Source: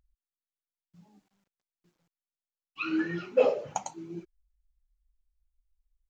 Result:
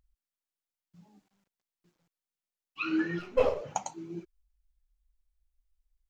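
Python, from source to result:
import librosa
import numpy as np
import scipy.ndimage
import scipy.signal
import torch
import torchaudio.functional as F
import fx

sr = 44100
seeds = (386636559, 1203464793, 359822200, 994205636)

y = fx.halfwave_gain(x, sr, db=-7.0, at=(3.19, 3.61))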